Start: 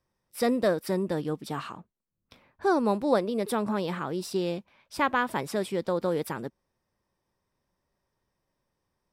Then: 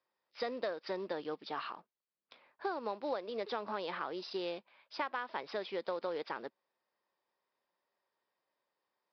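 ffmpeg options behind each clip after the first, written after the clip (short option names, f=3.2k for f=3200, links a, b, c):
-af "highpass=500,acompressor=threshold=-30dB:ratio=12,aresample=11025,acrusher=bits=6:mode=log:mix=0:aa=0.000001,aresample=44100,volume=-2.5dB"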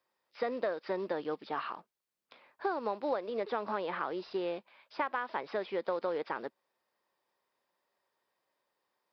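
-filter_complex "[0:a]acrossover=split=2600[a][b];[b]acompressor=threshold=-60dB:ratio=4:attack=1:release=60[c];[a][c]amix=inputs=2:normalize=0,volume=4dB"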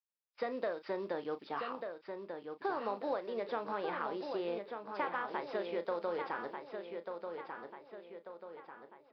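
-filter_complex "[0:a]agate=range=-25dB:threshold=-53dB:ratio=16:detection=peak,asplit=2[a][b];[b]adelay=35,volume=-11.5dB[c];[a][c]amix=inputs=2:normalize=0,asplit=2[d][e];[e]adelay=1191,lowpass=f=4.7k:p=1,volume=-6dB,asplit=2[f][g];[g]adelay=1191,lowpass=f=4.7k:p=1,volume=0.47,asplit=2[h][i];[i]adelay=1191,lowpass=f=4.7k:p=1,volume=0.47,asplit=2[j][k];[k]adelay=1191,lowpass=f=4.7k:p=1,volume=0.47,asplit=2[l][m];[m]adelay=1191,lowpass=f=4.7k:p=1,volume=0.47,asplit=2[n][o];[o]adelay=1191,lowpass=f=4.7k:p=1,volume=0.47[p];[d][f][h][j][l][n][p]amix=inputs=7:normalize=0,volume=-3.5dB"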